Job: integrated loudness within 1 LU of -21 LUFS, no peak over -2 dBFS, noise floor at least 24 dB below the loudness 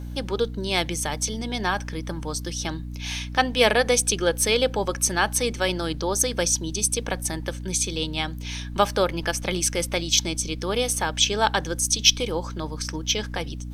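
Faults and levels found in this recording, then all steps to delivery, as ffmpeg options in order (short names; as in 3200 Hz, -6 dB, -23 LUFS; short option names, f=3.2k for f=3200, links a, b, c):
hum 60 Hz; harmonics up to 300 Hz; hum level -31 dBFS; loudness -24.0 LUFS; peak -2.5 dBFS; loudness target -21.0 LUFS
-> -af "bandreject=f=60:t=h:w=6,bandreject=f=120:t=h:w=6,bandreject=f=180:t=h:w=6,bandreject=f=240:t=h:w=6,bandreject=f=300:t=h:w=6"
-af "volume=3dB,alimiter=limit=-2dB:level=0:latency=1"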